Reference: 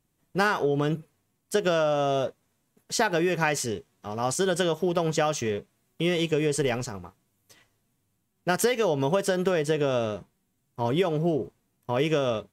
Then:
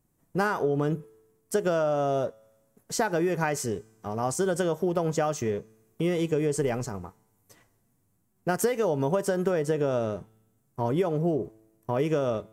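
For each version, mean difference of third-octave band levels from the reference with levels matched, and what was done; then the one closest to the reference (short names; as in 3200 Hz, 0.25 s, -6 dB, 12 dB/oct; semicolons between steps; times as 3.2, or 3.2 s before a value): 2.5 dB: bell 3300 Hz -11 dB 1.5 oct; in parallel at 0 dB: compressor, threshold -33 dBFS, peak gain reduction 13.5 dB; on the sum: resonator 110 Hz, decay 1.1 s, harmonics all, mix 30%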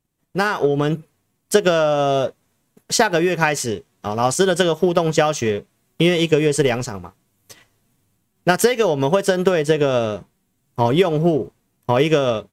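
1.5 dB: AGC gain up to 11.5 dB; transient shaper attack +5 dB, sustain -2 dB; in parallel at -12 dB: overloaded stage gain 10 dB; on the sum: gain -4.5 dB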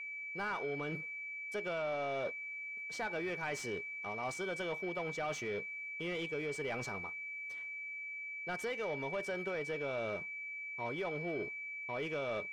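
5.0 dB: reverse; compressor, threshold -31 dBFS, peak gain reduction 12.5 dB; reverse; whine 2300 Hz -39 dBFS; overdrive pedal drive 13 dB, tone 2000 Hz, clips at -21.5 dBFS; gain -6.5 dB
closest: second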